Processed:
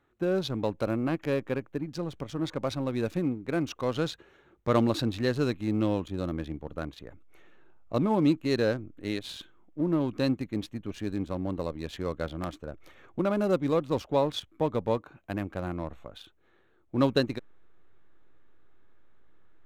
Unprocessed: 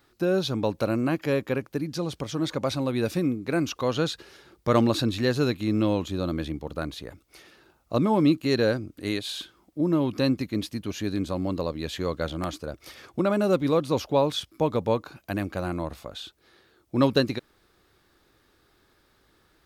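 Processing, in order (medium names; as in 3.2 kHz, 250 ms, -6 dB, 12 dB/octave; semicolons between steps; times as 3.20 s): local Wiener filter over 9 samples; in parallel at -7 dB: hysteresis with a dead band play -24 dBFS; on the sum: trim -6 dB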